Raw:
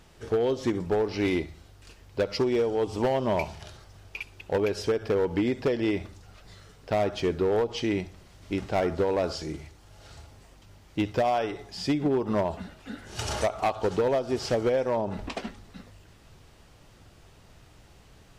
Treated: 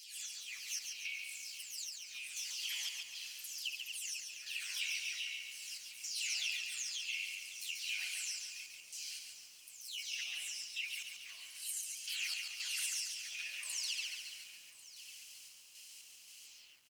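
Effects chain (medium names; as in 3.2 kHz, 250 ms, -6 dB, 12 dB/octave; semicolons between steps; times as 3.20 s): delay that grows with frequency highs early, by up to 467 ms; Chebyshev high-pass 2.5 kHz, order 4; peaking EQ 3.3 kHz -12 dB 0.3 oct; compression 20:1, threshold -50 dBFS, peak gain reduction 17.5 dB; random-step tremolo, depth 80%; delay 1192 ms -16.5 dB; on a send at -21 dB: reverberation RT60 1.8 s, pre-delay 5 ms; on the sum: speed mistake 44.1 kHz file played as 48 kHz; bit-crushed delay 140 ms, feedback 55%, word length 13-bit, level -5 dB; trim +15.5 dB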